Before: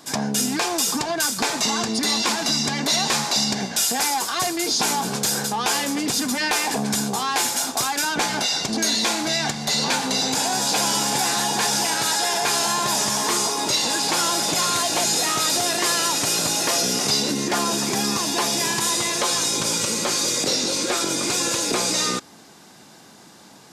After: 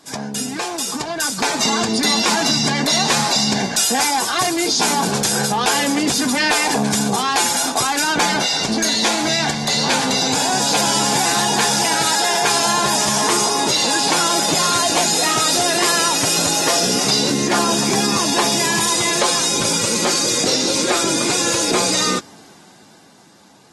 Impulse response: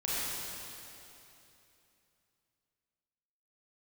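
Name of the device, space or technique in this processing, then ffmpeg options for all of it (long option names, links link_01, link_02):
low-bitrate web radio: -af "dynaudnorm=framelen=100:gausssize=31:maxgain=10dB,alimiter=limit=-7.5dB:level=0:latency=1:release=24,volume=-3.5dB" -ar 48000 -c:a aac -b:a 32k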